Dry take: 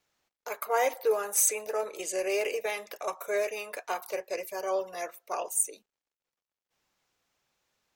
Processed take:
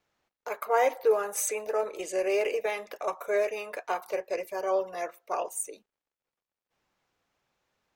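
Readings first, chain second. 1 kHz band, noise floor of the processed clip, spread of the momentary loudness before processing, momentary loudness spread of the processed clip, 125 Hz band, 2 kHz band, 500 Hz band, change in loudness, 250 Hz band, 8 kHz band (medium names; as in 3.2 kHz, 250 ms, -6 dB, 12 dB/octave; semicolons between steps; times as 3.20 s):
+2.5 dB, under -85 dBFS, 12 LU, 11 LU, no reading, 0.0 dB, +3.0 dB, +0.5 dB, +3.0 dB, -6.5 dB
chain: treble shelf 3.5 kHz -11 dB; trim +3 dB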